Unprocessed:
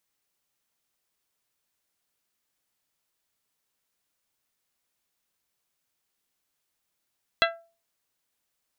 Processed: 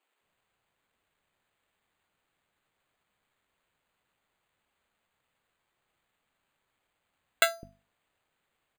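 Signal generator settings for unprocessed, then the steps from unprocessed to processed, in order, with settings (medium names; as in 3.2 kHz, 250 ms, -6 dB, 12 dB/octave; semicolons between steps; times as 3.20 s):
glass hit bell, lowest mode 670 Hz, modes 7, decay 0.36 s, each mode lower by 0 dB, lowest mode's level -20.5 dB
hum notches 50/100/150/200/250 Hz; sample-and-hold 8×; bands offset in time highs, lows 210 ms, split 290 Hz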